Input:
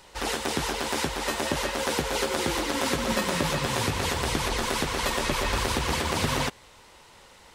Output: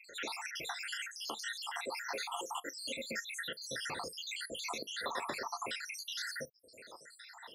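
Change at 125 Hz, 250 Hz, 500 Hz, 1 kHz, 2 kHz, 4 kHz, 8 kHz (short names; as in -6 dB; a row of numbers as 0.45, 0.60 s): -29.0, -21.5, -16.5, -13.5, -10.5, -10.5, -12.5 dB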